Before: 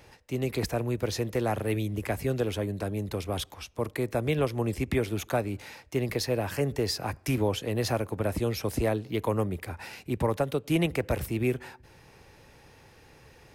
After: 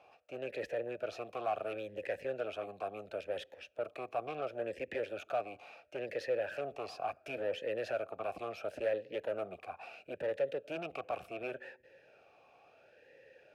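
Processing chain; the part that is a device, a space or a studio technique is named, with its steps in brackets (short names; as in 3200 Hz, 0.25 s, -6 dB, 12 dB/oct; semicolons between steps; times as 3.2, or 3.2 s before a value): talk box (tube stage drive 30 dB, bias 0.65; vowel sweep a-e 0.72 Hz); gain +9 dB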